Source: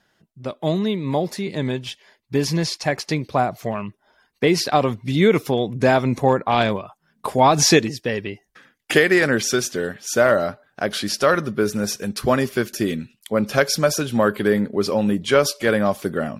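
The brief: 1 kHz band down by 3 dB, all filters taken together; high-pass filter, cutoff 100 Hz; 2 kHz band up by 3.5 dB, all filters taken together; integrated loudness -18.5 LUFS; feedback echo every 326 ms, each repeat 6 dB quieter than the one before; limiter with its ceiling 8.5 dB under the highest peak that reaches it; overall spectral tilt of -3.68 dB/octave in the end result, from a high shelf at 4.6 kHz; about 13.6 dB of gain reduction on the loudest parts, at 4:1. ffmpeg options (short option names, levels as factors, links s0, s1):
-af "highpass=100,equalizer=f=1000:t=o:g=-6,equalizer=f=2000:t=o:g=5.5,highshelf=f=4600:g=5,acompressor=threshold=0.0501:ratio=4,alimiter=limit=0.119:level=0:latency=1,aecho=1:1:326|652|978|1304|1630|1956:0.501|0.251|0.125|0.0626|0.0313|0.0157,volume=3.55"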